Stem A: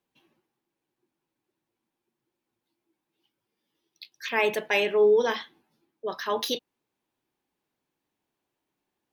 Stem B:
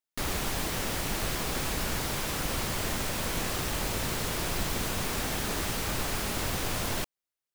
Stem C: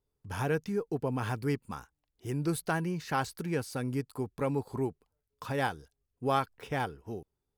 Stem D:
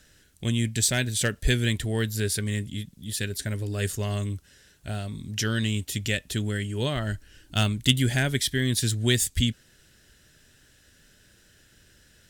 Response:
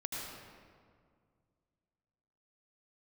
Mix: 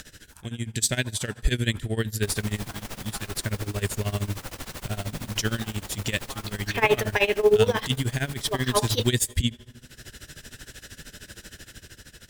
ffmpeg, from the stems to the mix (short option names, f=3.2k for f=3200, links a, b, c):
-filter_complex "[0:a]adelay=2450,volume=3dB,asplit=2[a][b];[b]volume=-22dB[c];[1:a]aeval=exprs='(tanh(25.1*val(0)+0.55)-tanh(0.55))/25.1':c=same,adelay=2050,volume=-4.5dB[d];[2:a]highpass=850,volume=-15dB,asplit=3[e][f][g];[f]volume=-6dB[h];[3:a]acompressor=mode=upward:threshold=-29dB:ratio=2.5,volume=-1.5dB,asplit=2[i][j];[j]volume=-22dB[k];[g]apad=whole_len=542335[l];[i][l]sidechaincompress=threshold=-53dB:ratio=8:attack=26:release=249[m];[4:a]atrim=start_sample=2205[n];[c][h][k]amix=inputs=3:normalize=0[o];[o][n]afir=irnorm=-1:irlink=0[p];[a][d][e][m][p]amix=inputs=5:normalize=0,dynaudnorm=f=180:g=9:m=4.5dB,tremolo=f=13:d=0.89"